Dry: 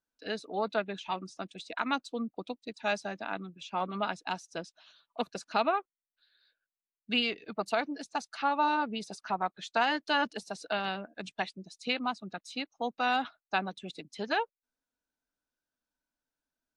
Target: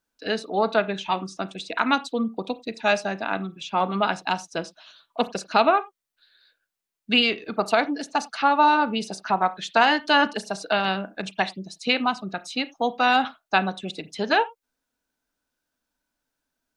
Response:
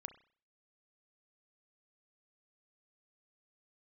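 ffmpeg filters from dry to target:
-filter_complex "[0:a]asplit=2[a][b];[1:a]atrim=start_sample=2205,atrim=end_sample=4410[c];[b][c]afir=irnorm=-1:irlink=0,volume=8dB[d];[a][d]amix=inputs=2:normalize=0,volume=2dB"

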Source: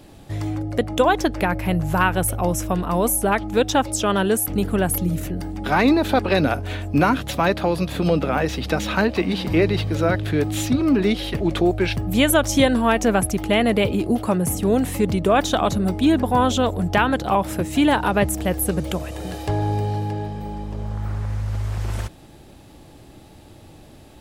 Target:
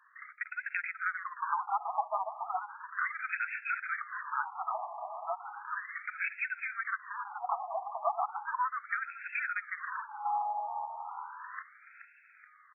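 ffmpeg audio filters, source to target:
-filter_complex "[0:a]highpass=f=640:w=0.5412,highpass=f=640:w=1.3066,acompressor=threshold=-24dB:ratio=6,atempo=1.9,asplit=2[a][b];[b]asplit=6[c][d][e][f][g][h];[c]adelay=426,afreqshift=81,volume=-10dB[i];[d]adelay=852,afreqshift=162,volume=-15.7dB[j];[e]adelay=1278,afreqshift=243,volume=-21.4dB[k];[f]adelay=1704,afreqshift=324,volume=-27dB[l];[g]adelay=2130,afreqshift=405,volume=-32.7dB[m];[h]adelay=2556,afreqshift=486,volume=-38.4dB[n];[i][j][k][l][m][n]amix=inputs=6:normalize=0[o];[a][o]amix=inputs=2:normalize=0,afftfilt=real='re*between(b*sr/1024,860*pow(1900/860,0.5+0.5*sin(2*PI*0.35*pts/sr))/1.41,860*pow(1900/860,0.5+0.5*sin(2*PI*0.35*pts/sr))*1.41)':imag='im*between(b*sr/1024,860*pow(1900/860,0.5+0.5*sin(2*PI*0.35*pts/sr))/1.41,860*pow(1900/860,0.5+0.5*sin(2*PI*0.35*pts/sr))*1.41)':win_size=1024:overlap=0.75"

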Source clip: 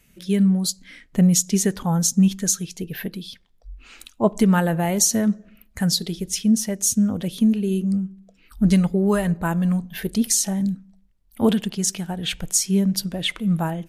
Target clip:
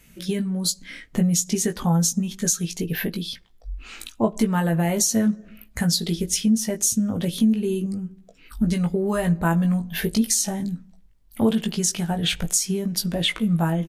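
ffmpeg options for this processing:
-filter_complex "[0:a]acompressor=threshold=-24dB:ratio=4,asplit=2[a][b];[b]adelay=18,volume=-5dB[c];[a][c]amix=inputs=2:normalize=0,volume=4dB"

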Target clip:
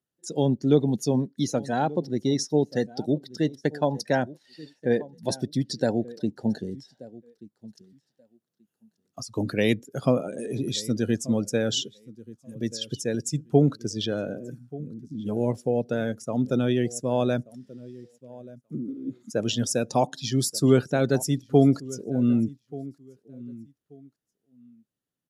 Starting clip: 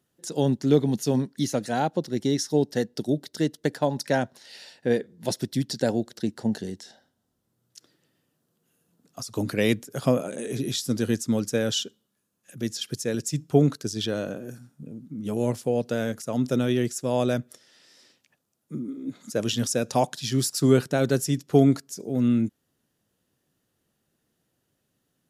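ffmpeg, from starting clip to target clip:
-filter_complex "[0:a]asplit=2[a][b];[b]aecho=0:1:1182|2364:0.119|0.0309[c];[a][c]amix=inputs=2:normalize=0,afftdn=nr=15:nf=-39"

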